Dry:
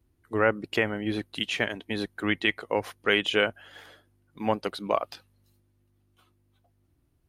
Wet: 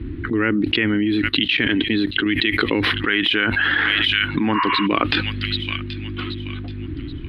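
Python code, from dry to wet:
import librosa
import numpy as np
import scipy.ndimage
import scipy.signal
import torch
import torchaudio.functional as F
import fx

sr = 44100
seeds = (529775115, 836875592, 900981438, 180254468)

y = fx.curve_eq(x, sr, hz=(190.0, 300.0, 640.0, 1800.0, 4000.0, 6900.0, 11000.0), db=(0, 8, -19, 1, 3, -24, -1))
y = fx.env_lowpass(y, sr, base_hz=2000.0, full_db=-17.5)
y = fx.level_steps(y, sr, step_db=16, at=(1.29, 2.26))
y = fx.echo_wet_highpass(y, sr, ms=779, feedback_pct=30, hz=2800.0, wet_db=-20.5)
y = fx.spec_repair(y, sr, seeds[0], start_s=4.57, length_s=0.27, low_hz=920.0, high_hz=2900.0, source='before')
y = fx.band_shelf(y, sr, hz=1100.0, db=8.0, octaves=1.7, at=(2.92, 4.69))
y = fx.env_flatten(y, sr, amount_pct=100)
y = y * librosa.db_to_amplitude(-1.5)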